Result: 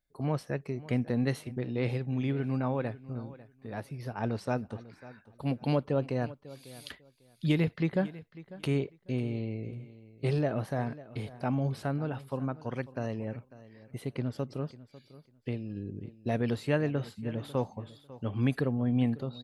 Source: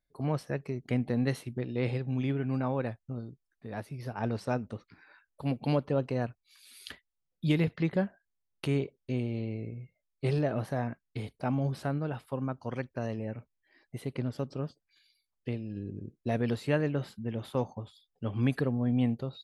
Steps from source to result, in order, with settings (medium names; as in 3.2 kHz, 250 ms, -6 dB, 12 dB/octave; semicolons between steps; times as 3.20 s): feedback delay 547 ms, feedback 20%, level -18 dB